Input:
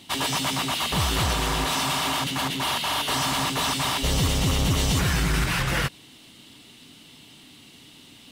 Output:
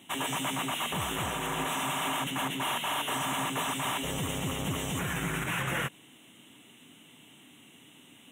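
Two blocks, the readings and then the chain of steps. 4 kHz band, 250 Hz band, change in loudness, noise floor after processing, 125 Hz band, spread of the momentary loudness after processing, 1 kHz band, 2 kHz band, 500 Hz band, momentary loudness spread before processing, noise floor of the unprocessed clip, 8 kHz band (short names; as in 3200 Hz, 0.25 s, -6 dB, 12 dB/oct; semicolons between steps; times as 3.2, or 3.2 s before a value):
-9.0 dB, -6.5 dB, -7.5 dB, -56 dBFS, -10.5 dB, 2 LU, -5.0 dB, -5.5 dB, -5.5 dB, 3 LU, -50 dBFS, -7.5 dB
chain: HPF 140 Hz 12 dB/oct; limiter -17.5 dBFS, peak gain reduction 4.5 dB; Butterworth band-stop 4700 Hz, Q 1.4; gain -4 dB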